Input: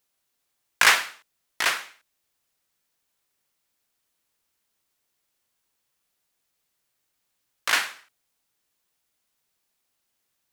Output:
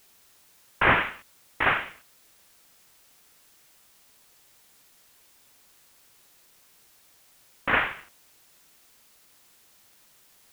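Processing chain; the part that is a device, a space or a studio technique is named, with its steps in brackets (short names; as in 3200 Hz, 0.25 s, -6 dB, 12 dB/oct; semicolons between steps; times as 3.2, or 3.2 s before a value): army field radio (BPF 330–3400 Hz; CVSD 16 kbps; white noise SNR 25 dB); gain +6.5 dB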